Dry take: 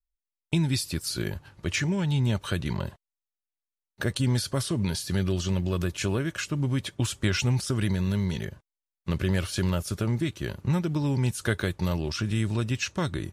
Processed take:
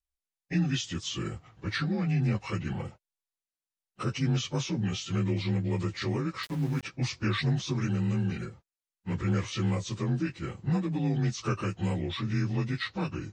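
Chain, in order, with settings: frequency axis rescaled in octaves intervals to 87%; 6.43–6.83 s: small samples zeroed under -39 dBFS; trim -1.5 dB

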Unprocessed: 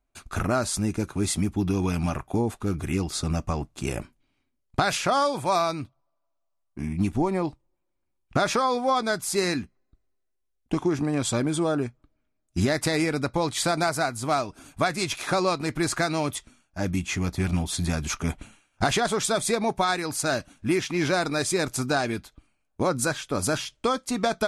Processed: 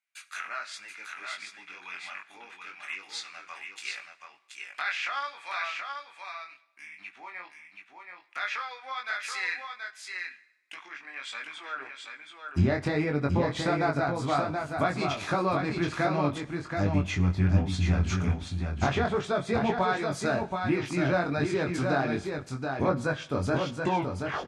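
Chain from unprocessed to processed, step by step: tape stop on the ending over 0.75 s; low-pass that closes with the level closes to 2.4 kHz, closed at -21.5 dBFS; chorus 1.3 Hz, delay 20 ms, depth 2.9 ms; high-pass sweep 2 kHz -> 70 Hz, 11.69–12.52 s; on a send: delay 728 ms -5 dB; on the sum: two-slope reverb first 0.79 s, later 2 s, from -20 dB, DRR 15 dB

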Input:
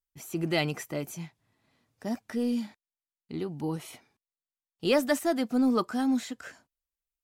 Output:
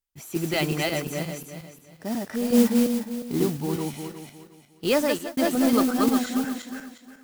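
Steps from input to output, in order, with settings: backward echo that repeats 179 ms, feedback 52%, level -1 dB; 2.52–3.57 s: ten-band graphic EQ 125 Hz +5 dB, 250 Hz +6 dB, 500 Hz +6 dB, 1 kHz +7 dB; 4.96–5.37 s: fade out; modulation noise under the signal 15 dB; trim +2 dB

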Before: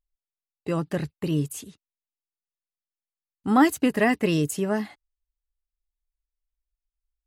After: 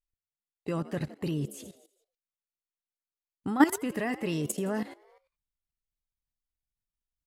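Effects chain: frequency-shifting echo 83 ms, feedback 57%, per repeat +65 Hz, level -17 dB; level held to a coarse grid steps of 15 dB

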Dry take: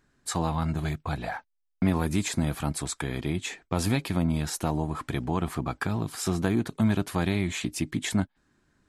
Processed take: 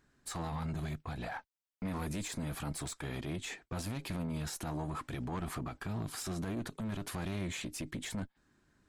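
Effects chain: single-diode clipper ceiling -27.5 dBFS; peak limiter -28.5 dBFS, peak gain reduction 11.5 dB; trim -2.5 dB

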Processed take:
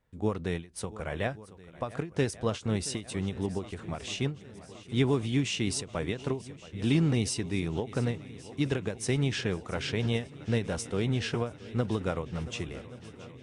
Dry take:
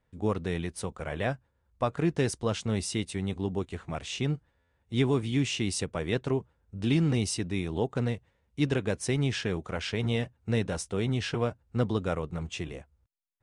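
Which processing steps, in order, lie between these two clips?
shuffle delay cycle 1126 ms, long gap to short 1.5:1, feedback 60%, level -18.5 dB; endings held to a fixed fall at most 180 dB/s

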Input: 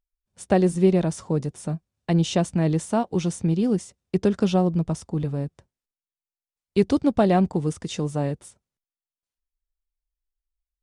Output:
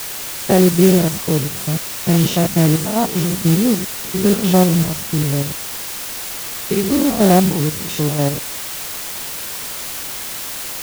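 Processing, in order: spectrogram pixelated in time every 100 ms; word length cut 6-bit, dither triangular; modulation noise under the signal 14 dB; trim +8.5 dB

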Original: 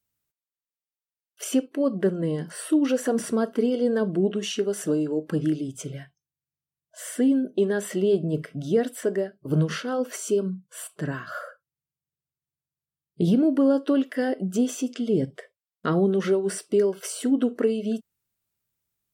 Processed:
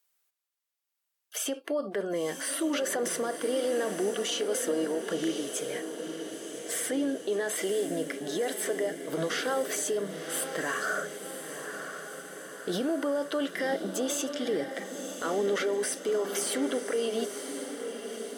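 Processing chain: high-pass 550 Hz 12 dB/octave; compressor with a negative ratio -26 dBFS; peak limiter -29 dBFS, peak gain reduction 13.5 dB; echo that smears into a reverb 1065 ms, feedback 58%, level -8 dB; speed mistake 24 fps film run at 25 fps; trim +6.5 dB

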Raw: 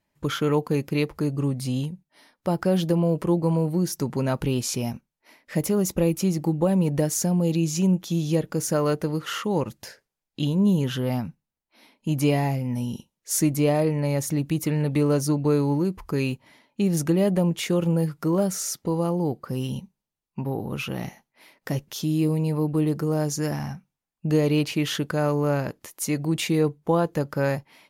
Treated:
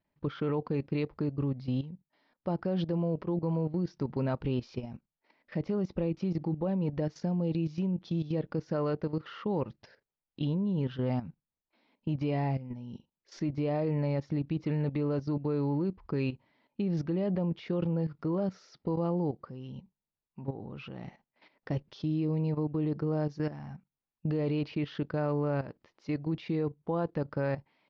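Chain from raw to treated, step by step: level held to a coarse grid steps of 13 dB; steep low-pass 5.1 kHz 48 dB/octave; treble shelf 2.3 kHz -8 dB; trim -3 dB

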